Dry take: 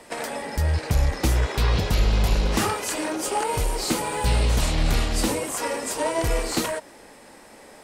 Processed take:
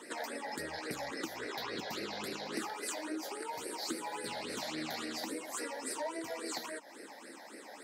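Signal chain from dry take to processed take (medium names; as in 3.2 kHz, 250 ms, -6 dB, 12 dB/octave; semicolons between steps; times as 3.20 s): ladder high-pass 260 Hz, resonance 40%; compression 6:1, threshold -41 dBFS, peak gain reduction 15 dB; phase shifter stages 8, 3.6 Hz, lowest notch 340–1000 Hz; trim +8 dB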